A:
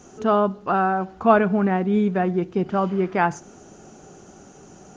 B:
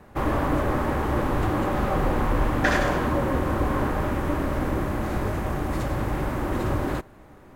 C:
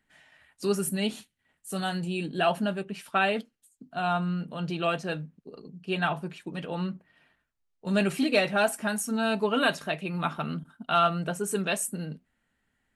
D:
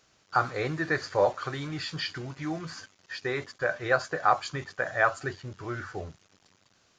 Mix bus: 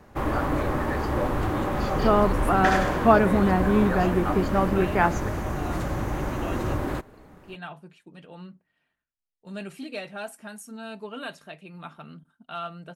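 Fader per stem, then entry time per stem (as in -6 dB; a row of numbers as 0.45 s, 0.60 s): -1.5 dB, -2.0 dB, -11.5 dB, -8.5 dB; 1.80 s, 0.00 s, 1.60 s, 0.00 s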